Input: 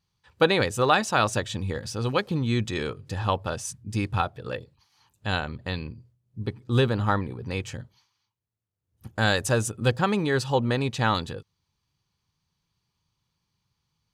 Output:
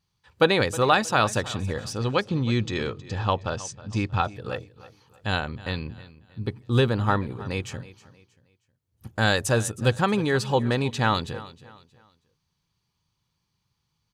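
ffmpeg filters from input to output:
-filter_complex "[0:a]asettb=1/sr,asplit=3[s0][s1][s2];[s0]atrim=end=1.934[s3];[s1]atrim=start=1.93:end=4.25,asetpts=PTS-STARTPTS,afade=t=in:d=0.004:c=qsin,afade=t=out:st=2.316:d=0.004:c=qsin,lowpass=f=7000:w=0.5412,lowpass=f=7000:w=1.3066[s4];[s2]atrim=start=4.246[s5];[s3][s4]acrossfade=d=0.004:c1=hsin:c2=qsin[s6];[s6][s5]acrossfade=d=0.004:c1=qsin:c2=hsin,aecho=1:1:316|632|948:0.126|0.0428|0.0146,volume=1.12"

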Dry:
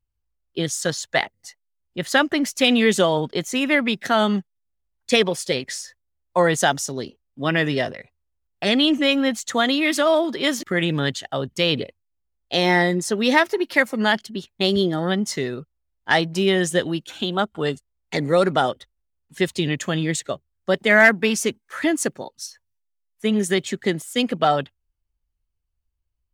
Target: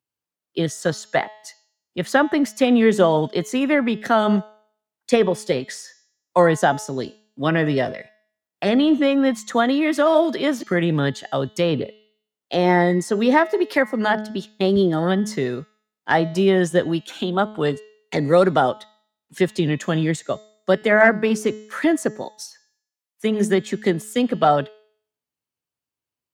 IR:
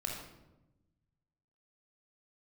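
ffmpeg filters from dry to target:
-filter_complex "[0:a]bandreject=f=214:t=h:w=4,bandreject=f=428:t=h:w=4,bandreject=f=642:t=h:w=4,bandreject=f=856:t=h:w=4,bandreject=f=1070:t=h:w=4,bandreject=f=1284:t=h:w=4,bandreject=f=1498:t=h:w=4,bandreject=f=1712:t=h:w=4,bandreject=f=1926:t=h:w=4,bandreject=f=2140:t=h:w=4,bandreject=f=2354:t=h:w=4,bandreject=f=2568:t=h:w=4,bandreject=f=2782:t=h:w=4,bandreject=f=2996:t=h:w=4,bandreject=f=3210:t=h:w=4,bandreject=f=3424:t=h:w=4,bandreject=f=3638:t=h:w=4,bandreject=f=3852:t=h:w=4,bandreject=f=4066:t=h:w=4,bandreject=f=4280:t=h:w=4,bandreject=f=4494:t=h:w=4,bandreject=f=4708:t=h:w=4,bandreject=f=4922:t=h:w=4,bandreject=f=5136:t=h:w=4,bandreject=f=5350:t=h:w=4,bandreject=f=5564:t=h:w=4,bandreject=f=5778:t=h:w=4,bandreject=f=5992:t=h:w=4,bandreject=f=6206:t=h:w=4,bandreject=f=6420:t=h:w=4,bandreject=f=6634:t=h:w=4,bandreject=f=6848:t=h:w=4,bandreject=f=7062:t=h:w=4,bandreject=f=7276:t=h:w=4,bandreject=f=7490:t=h:w=4,acrossover=split=150|1600[s0][s1][s2];[s0]aeval=exprs='sgn(val(0))*max(abs(val(0))-0.00141,0)':c=same[s3];[s2]acompressor=threshold=0.0158:ratio=5[s4];[s3][s1][s4]amix=inputs=3:normalize=0,volume=1.41"

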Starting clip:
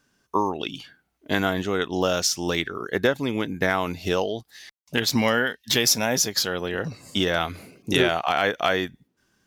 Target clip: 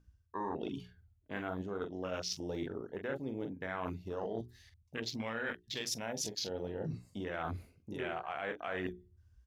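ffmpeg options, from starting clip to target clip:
-filter_complex "[0:a]aeval=exprs='val(0)+0.00562*(sin(2*PI*60*n/s)+sin(2*PI*2*60*n/s)/2+sin(2*PI*3*60*n/s)/3+sin(2*PI*4*60*n/s)/4+sin(2*PI*5*60*n/s)/5)':c=same,asplit=2[s0][s1];[s1]adelay=44,volume=0.398[s2];[s0][s2]amix=inputs=2:normalize=0,afwtdn=0.0501,bandreject=f=60:t=h:w=6,bandreject=f=120:t=h:w=6,bandreject=f=180:t=h:w=6,bandreject=f=240:t=h:w=6,bandreject=f=300:t=h:w=6,bandreject=f=360:t=h:w=6,bandreject=f=420:t=h:w=6,areverse,acompressor=threshold=0.0224:ratio=12,areverse,volume=0.794"

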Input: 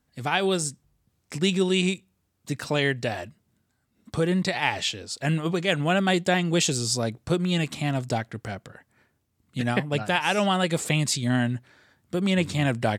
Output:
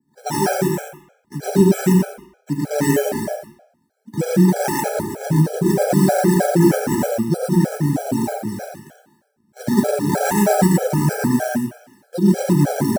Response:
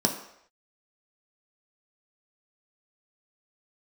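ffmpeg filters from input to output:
-filter_complex "[0:a]highpass=f=200:p=1,acrusher=samples=13:mix=1:aa=0.000001:lfo=1:lforange=7.8:lforate=2.7,asuperstop=centerf=1100:order=4:qfactor=5.3,highshelf=f=7300:t=q:w=1.5:g=9,aecho=1:1:75.8|113.7|201.2:0.631|1|0.501[s0];[1:a]atrim=start_sample=2205[s1];[s0][s1]afir=irnorm=-1:irlink=0,adynamicequalizer=threshold=0.0224:dfrequency=3700:dqfactor=1.1:tfrequency=3700:tqfactor=1.1:attack=5:release=100:ratio=0.375:range=3:mode=cutabove:tftype=bell,afftfilt=real='re*gt(sin(2*PI*3.2*pts/sr)*(1-2*mod(floor(b*sr/1024/430),2)),0)':imag='im*gt(sin(2*PI*3.2*pts/sr)*(1-2*mod(floor(b*sr/1024/430),2)),0)':win_size=1024:overlap=0.75,volume=0.398"

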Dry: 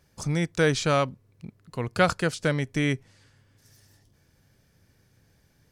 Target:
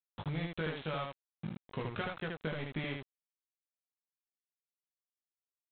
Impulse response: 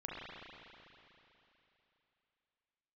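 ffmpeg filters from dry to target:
-af "aemphasis=mode=production:type=50fm,agate=range=0.0224:threshold=0.00398:ratio=3:detection=peak,acompressor=threshold=0.0178:ratio=16,aresample=8000,aeval=exprs='val(0)*gte(abs(val(0)),0.00708)':c=same,aresample=44100,aecho=1:1:19|77:0.596|0.708"

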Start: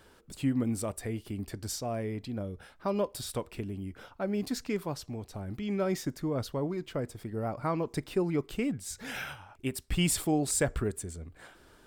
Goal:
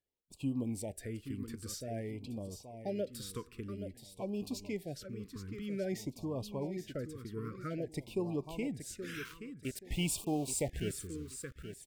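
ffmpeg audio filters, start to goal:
-filter_complex "[0:a]asettb=1/sr,asplit=3[s0][s1][s2];[s0]atrim=end=9.254[s3];[s1]atrim=start=9.25:end=10.93,asetpts=PTS-STARTPTS,afade=t=in:d=0.004:c=qsin,afade=t=out:st=1.676:d=0.004:c=qsin,aeval=exprs='val(0)*gte(abs(val(0)),0.0126)':c=same[s4];[s2]atrim=start=10.926[s5];[s3][s4]acrossfade=d=0.004:c1=hsin:c2=qsin[s6];[s6][s5]acrossfade=d=0.004:c1=qsin:c2=hsin,agate=range=0.0355:threshold=0.00562:ratio=16:detection=peak,aecho=1:1:826|1652|2478:0.335|0.0938|0.0263,afftfilt=real='re*(1-between(b*sr/1024,690*pow(1700/690,0.5+0.5*sin(2*PI*0.51*pts/sr))/1.41,690*pow(1700/690,0.5+0.5*sin(2*PI*0.51*pts/sr))*1.41))':imag='im*(1-between(b*sr/1024,690*pow(1700/690,0.5+0.5*sin(2*PI*0.51*pts/sr))/1.41,690*pow(1700/690,0.5+0.5*sin(2*PI*0.51*pts/sr))*1.41))':win_size=1024:overlap=0.75,volume=0.473"

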